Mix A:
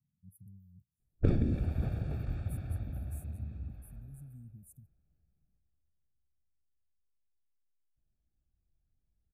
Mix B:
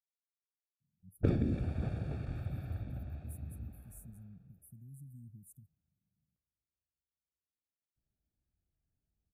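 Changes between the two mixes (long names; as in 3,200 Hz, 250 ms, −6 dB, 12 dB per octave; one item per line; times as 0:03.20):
speech: entry +0.80 s
master: add high-pass filter 94 Hz 6 dB per octave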